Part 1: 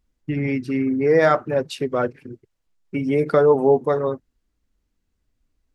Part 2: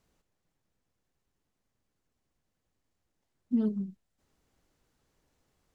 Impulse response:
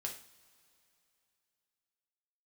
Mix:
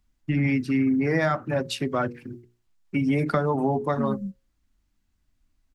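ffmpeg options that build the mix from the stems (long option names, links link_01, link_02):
-filter_complex "[0:a]bandreject=frequency=60:width_type=h:width=6,bandreject=frequency=120:width_type=h:width=6,bandreject=frequency=180:width_type=h:width=6,bandreject=frequency=240:width_type=h:width=6,bandreject=frequency=300:width_type=h:width=6,bandreject=frequency=360:width_type=h:width=6,bandreject=frequency=420:width_type=h:width=6,bandreject=frequency=480:width_type=h:width=6,bandreject=frequency=540:width_type=h:width=6,volume=2dB,asplit=2[link_01][link_02];[1:a]crystalizer=i=5.5:c=0,asubboost=boost=10.5:cutoff=200,adelay=450,volume=-10.5dB[link_03];[link_02]apad=whole_len=273214[link_04];[link_03][link_04]sidechaingate=range=-33dB:threshold=-41dB:ratio=16:detection=peak[link_05];[link_01][link_05]amix=inputs=2:normalize=0,equalizer=frequency=460:width=2.9:gain=-11.5,acrossover=split=210[link_06][link_07];[link_07]acompressor=threshold=-21dB:ratio=6[link_08];[link_06][link_08]amix=inputs=2:normalize=0"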